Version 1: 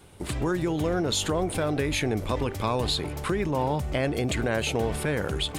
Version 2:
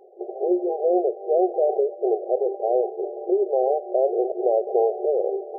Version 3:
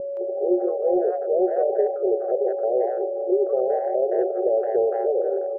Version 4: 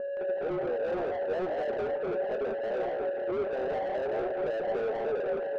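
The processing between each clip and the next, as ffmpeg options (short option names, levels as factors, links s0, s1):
-af "afftfilt=real='re*between(b*sr/4096,350,810)':imag='im*between(b*sr/4096,350,810)':win_size=4096:overlap=0.75,volume=2.82"
-filter_complex "[0:a]acontrast=40,aeval=exprs='val(0)+0.112*sin(2*PI*560*n/s)':c=same,acrossover=split=690[s0][s1];[s1]adelay=170[s2];[s0][s2]amix=inputs=2:normalize=0,volume=0.596"
-filter_complex "[0:a]flanger=delay=7.9:depth=7.7:regen=84:speed=1.4:shape=triangular,asplit=2[s0][s1];[s1]highpass=f=720:p=1,volume=20,asoftclip=type=tanh:threshold=0.2[s2];[s0][s2]amix=inputs=2:normalize=0,lowpass=f=1200:p=1,volume=0.501,flanger=delay=4.5:depth=6:regen=62:speed=0.4:shape=sinusoidal,volume=0.531"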